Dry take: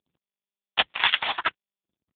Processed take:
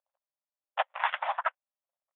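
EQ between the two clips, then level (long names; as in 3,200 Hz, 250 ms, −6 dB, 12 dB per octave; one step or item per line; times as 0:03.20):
linear-phase brick-wall high-pass 520 Hz
low-pass filter 1,100 Hz 12 dB per octave
high-frequency loss of the air 130 metres
+2.5 dB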